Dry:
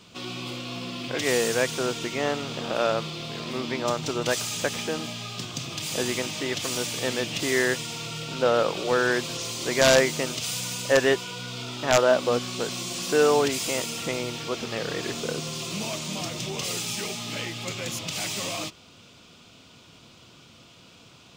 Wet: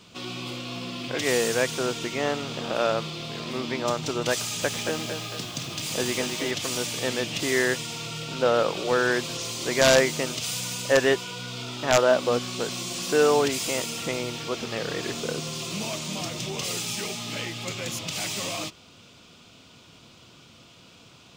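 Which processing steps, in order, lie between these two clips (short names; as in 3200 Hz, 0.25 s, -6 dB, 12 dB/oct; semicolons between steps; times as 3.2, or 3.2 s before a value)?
4.4–6.51 lo-fi delay 0.225 s, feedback 55%, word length 7-bit, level -5.5 dB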